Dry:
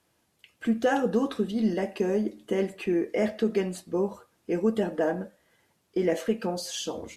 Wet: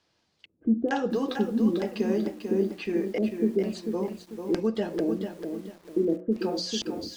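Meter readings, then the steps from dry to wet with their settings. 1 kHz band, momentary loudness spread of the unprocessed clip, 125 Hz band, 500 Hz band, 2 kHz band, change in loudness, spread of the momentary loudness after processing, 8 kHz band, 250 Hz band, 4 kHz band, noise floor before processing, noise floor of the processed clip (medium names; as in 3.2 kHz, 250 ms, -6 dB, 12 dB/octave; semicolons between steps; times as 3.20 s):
-3.0 dB, 7 LU, 0.0 dB, -1.0 dB, -3.5 dB, 0.0 dB, 8 LU, no reading, +1.5 dB, +2.5 dB, -71 dBFS, -72 dBFS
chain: LFO low-pass square 1.1 Hz 320–4800 Hz; hum notches 60/120/180/240/300/360 Hz; bit-crushed delay 444 ms, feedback 35%, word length 8-bit, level -6.5 dB; trim -2 dB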